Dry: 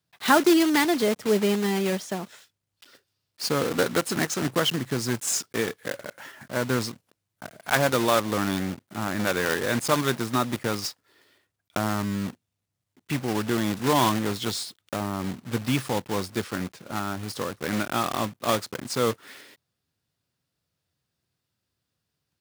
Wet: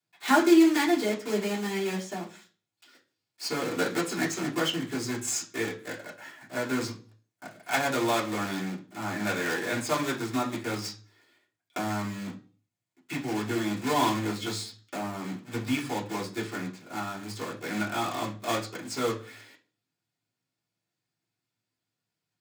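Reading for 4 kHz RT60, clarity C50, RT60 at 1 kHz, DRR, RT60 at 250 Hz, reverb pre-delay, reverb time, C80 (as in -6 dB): 0.40 s, 12.5 dB, 0.35 s, -6.0 dB, 0.45 s, 3 ms, 0.40 s, 17.5 dB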